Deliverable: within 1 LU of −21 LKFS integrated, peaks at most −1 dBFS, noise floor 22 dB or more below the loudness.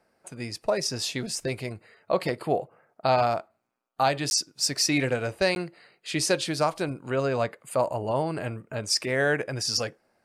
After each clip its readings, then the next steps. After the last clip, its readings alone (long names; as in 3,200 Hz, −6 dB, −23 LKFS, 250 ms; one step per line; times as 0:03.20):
number of dropouts 2; longest dropout 11 ms; integrated loudness −27.0 LKFS; sample peak −11.5 dBFS; target loudness −21.0 LKFS
→ repair the gap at 0:04.30/0:05.55, 11 ms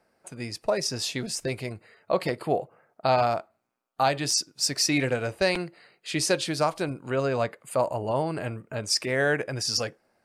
number of dropouts 0; integrated loudness −27.0 LKFS; sample peak −11.5 dBFS; target loudness −21.0 LKFS
→ level +6 dB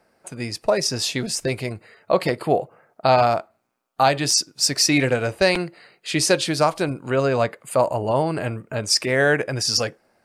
integrated loudness −21.0 LKFS; sample peak −5.5 dBFS; background noise floor −67 dBFS